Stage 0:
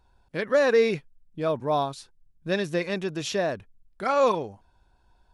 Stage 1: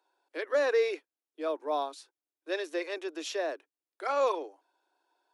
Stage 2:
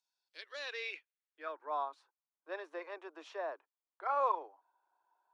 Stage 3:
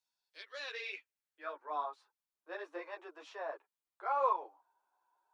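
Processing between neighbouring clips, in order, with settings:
steep high-pass 290 Hz 96 dB/oct; gain -6 dB
band-pass sweep 6200 Hz -> 1000 Hz, 0.01–1.96; gain +1.5 dB
ensemble effect; gain +2.5 dB

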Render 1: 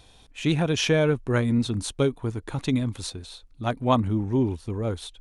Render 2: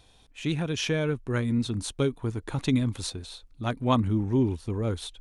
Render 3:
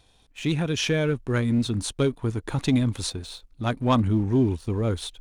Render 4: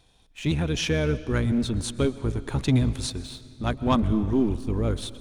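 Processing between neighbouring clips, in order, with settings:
dynamic EQ 700 Hz, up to -5 dB, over -36 dBFS, Q 1.4; vocal rider 2 s; gain -2.5 dB
sample leveller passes 1
octaver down 1 oct, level -3 dB; on a send at -15.5 dB: reverb RT60 2.3 s, pre-delay 86 ms; on the sum: gain -1.5 dB

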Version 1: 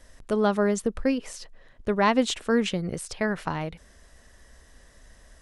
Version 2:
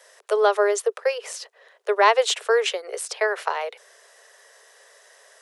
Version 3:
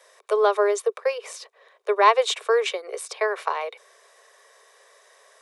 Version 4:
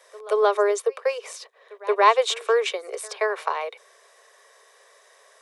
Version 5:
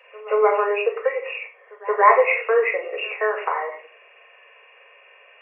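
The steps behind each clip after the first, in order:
steep high-pass 400 Hz 96 dB/oct; gain +6 dB
low shelf 340 Hz +11 dB; small resonant body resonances 1100/2300/3700 Hz, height 10 dB, ringing for 25 ms; gain -4.5 dB
pre-echo 0.177 s -21 dB
nonlinear frequency compression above 1800 Hz 4:1; shoebox room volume 490 m³, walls furnished, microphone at 2 m

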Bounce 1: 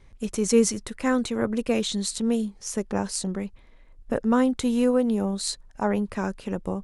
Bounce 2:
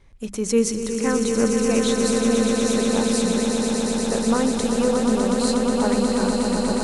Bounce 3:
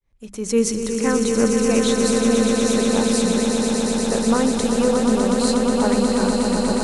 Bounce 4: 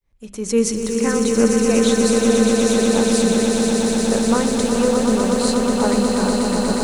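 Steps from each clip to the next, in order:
notches 50/100/150/200/250 Hz; swelling echo 0.121 s, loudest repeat 8, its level -7 dB
opening faded in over 0.68 s; gain +2 dB
de-hum 128.8 Hz, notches 33; lo-fi delay 0.428 s, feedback 80%, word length 7-bit, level -11 dB; gain +1 dB

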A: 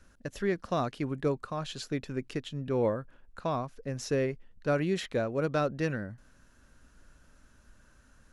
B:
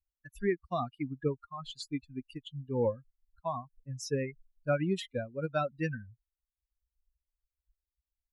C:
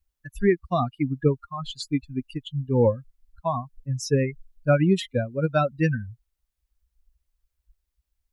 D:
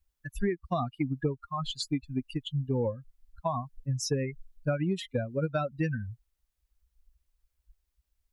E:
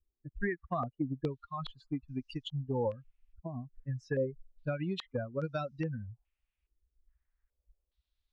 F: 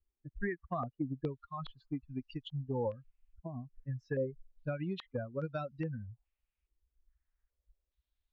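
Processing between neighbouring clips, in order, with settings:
per-bin expansion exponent 3; gain +3 dB
low shelf 200 Hz +7 dB; gain +8 dB
compressor 6:1, threshold -26 dBFS, peak gain reduction 12 dB
stepped low-pass 2.4 Hz 370–5600 Hz; gain -6 dB
air absorption 160 m; gain -2 dB

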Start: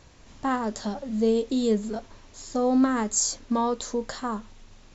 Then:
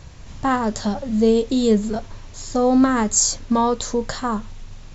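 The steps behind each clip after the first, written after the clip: resonant low shelf 190 Hz +6.5 dB, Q 1.5; gain +7 dB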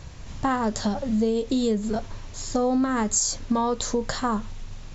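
compressor, threshold -20 dBFS, peak gain reduction 9 dB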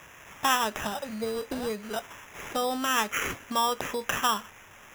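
band-pass 1800 Hz, Q 1.2; sample-and-hold 10×; gain +6.5 dB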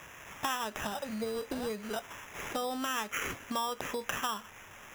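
compressor 2.5:1, threshold -34 dBFS, peak gain reduction 10.5 dB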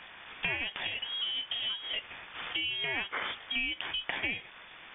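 inverted band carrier 3500 Hz; gain +1 dB

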